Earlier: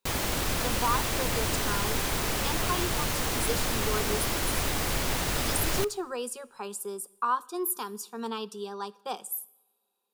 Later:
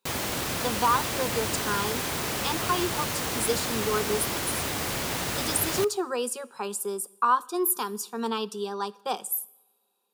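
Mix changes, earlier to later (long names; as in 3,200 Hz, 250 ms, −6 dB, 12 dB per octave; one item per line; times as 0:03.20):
speech +5.0 dB
master: add high-pass filter 93 Hz 12 dB per octave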